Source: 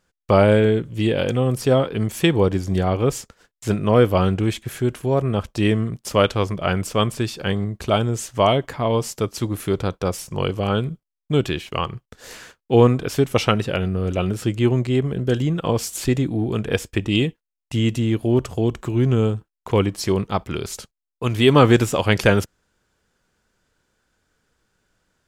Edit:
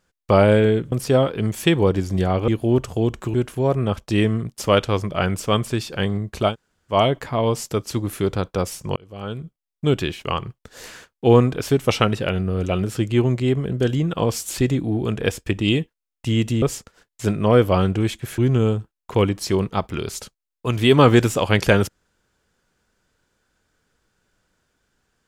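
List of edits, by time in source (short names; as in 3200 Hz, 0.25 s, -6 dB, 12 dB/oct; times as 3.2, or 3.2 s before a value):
0.92–1.49 cut
3.05–4.81 swap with 18.09–18.95
7.98–8.4 room tone, crossfade 0.10 s
10.43–11.34 fade in linear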